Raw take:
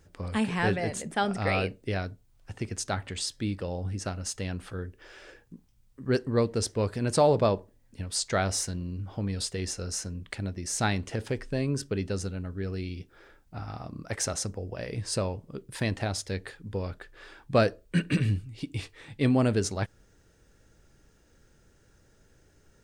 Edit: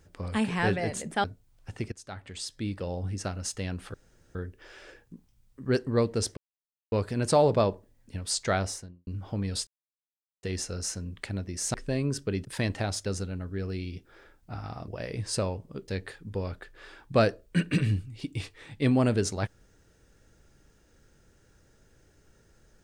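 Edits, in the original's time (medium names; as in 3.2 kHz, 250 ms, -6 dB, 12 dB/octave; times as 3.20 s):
1.24–2.05 s: delete
2.73–3.70 s: fade in, from -18.5 dB
4.75 s: insert room tone 0.41 s
6.77 s: insert silence 0.55 s
8.37–8.92 s: studio fade out
9.52 s: insert silence 0.76 s
10.83–11.38 s: delete
13.92–14.67 s: delete
15.67–16.27 s: move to 12.09 s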